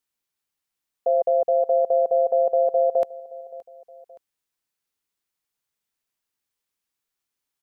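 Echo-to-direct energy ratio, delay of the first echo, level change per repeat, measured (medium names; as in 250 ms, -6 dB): -19.5 dB, 571 ms, -5.5 dB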